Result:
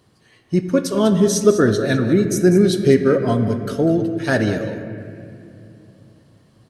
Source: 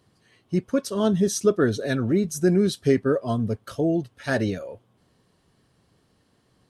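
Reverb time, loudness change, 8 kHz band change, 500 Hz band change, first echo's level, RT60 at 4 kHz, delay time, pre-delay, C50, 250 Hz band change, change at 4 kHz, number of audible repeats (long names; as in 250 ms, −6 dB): 2.7 s, +6.5 dB, +6.0 dB, +6.5 dB, −12.0 dB, 1.7 s, 198 ms, 15 ms, 7.5 dB, +6.5 dB, +6.0 dB, 1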